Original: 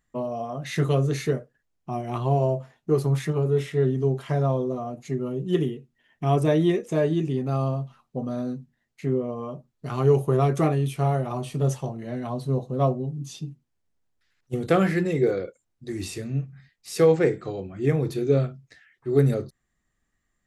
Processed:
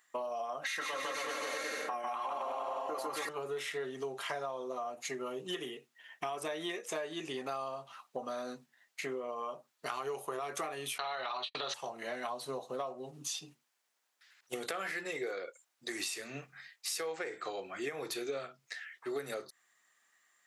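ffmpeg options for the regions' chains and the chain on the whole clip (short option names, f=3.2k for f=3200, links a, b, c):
-filter_complex "[0:a]asettb=1/sr,asplit=3[a][b][c];[a]atrim=end=0.634[d];[b]atrim=start=0.63:end=3.29,asetpts=PTS-STARTPTS,afade=t=in:d=0.004:c=qsin,afade=t=out:st=2.656:d=0.004:c=qsin,equalizer=f=1.1k:t=o:w=1.6:g=8,aecho=1:1:3.7:0.67,atrim=end_sample=117306,aecho=1:1:150|270|366|442.8|504.2|553.4|592.7|624.2:0.794|0.631|0.501|0.398|0.316|0.251|0.2|0.158,atrim=end_sample=117306[e];[c]atrim=start=3.286[f];[d][e]acrossfade=d=0.004:c1=hsin:c2=qsin[g];[g][f]acrossfade=d=0.004:c1=qsin:c2=hsin,asettb=1/sr,asplit=3[h][i][j];[h]atrim=end=10.984[k];[i]atrim=start=10.98:end=11.74,asetpts=PTS-STARTPTS,afade=t=in:d=0.004:c=qsin,afade=t=out:st=0.756:d=0.004:c=qsin,agate=range=-54dB:threshold=-34dB:ratio=16:release=100:detection=peak,lowpass=f=4k:t=q:w=16,equalizer=f=1.6k:w=0.39:g=13.5[l];[j]atrim=start=11.736[m];[k][l]acrossfade=d=0.004:c1=hsin:c2=qsin[n];[n][m]acrossfade=d=0.004:c1=qsin:c2=hsin,highpass=910,alimiter=level_in=1dB:limit=-24dB:level=0:latency=1:release=121,volume=-1dB,acompressor=threshold=-46dB:ratio=6,volume=10dB"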